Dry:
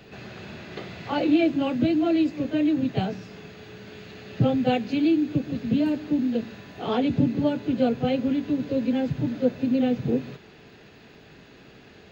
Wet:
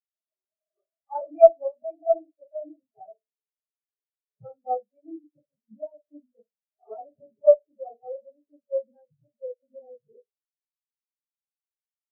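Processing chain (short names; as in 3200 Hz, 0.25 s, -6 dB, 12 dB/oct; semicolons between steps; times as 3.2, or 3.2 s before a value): band shelf 1100 Hz +14 dB 2.5 oct; reverb RT60 0.45 s, pre-delay 3 ms, DRR -1 dB; one-sided clip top -18.5 dBFS; spectral expander 4:1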